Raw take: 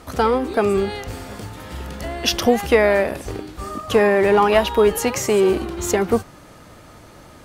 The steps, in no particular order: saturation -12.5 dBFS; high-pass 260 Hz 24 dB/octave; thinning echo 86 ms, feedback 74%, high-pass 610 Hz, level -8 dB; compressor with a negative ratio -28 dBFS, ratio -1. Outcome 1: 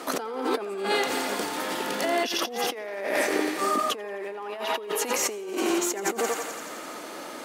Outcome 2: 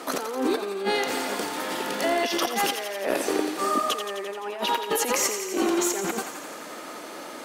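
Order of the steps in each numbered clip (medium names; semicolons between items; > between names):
thinning echo > compressor with a negative ratio > saturation > high-pass; high-pass > compressor with a negative ratio > saturation > thinning echo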